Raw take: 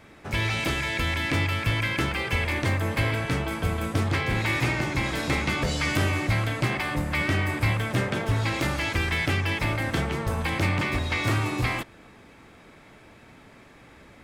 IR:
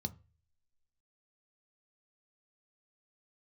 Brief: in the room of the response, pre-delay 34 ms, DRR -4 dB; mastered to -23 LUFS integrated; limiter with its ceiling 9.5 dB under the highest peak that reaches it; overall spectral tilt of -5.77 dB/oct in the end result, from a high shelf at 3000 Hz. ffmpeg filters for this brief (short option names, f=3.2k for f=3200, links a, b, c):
-filter_complex "[0:a]highshelf=f=3k:g=7,alimiter=limit=-21dB:level=0:latency=1,asplit=2[a][b];[1:a]atrim=start_sample=2205,adelay=34[c];[b][c]afir=irnorm=-1:irlink=0,volume=5.5dB[d];[a][d]amix=inputs=2:normalize=0,volume=-5dB"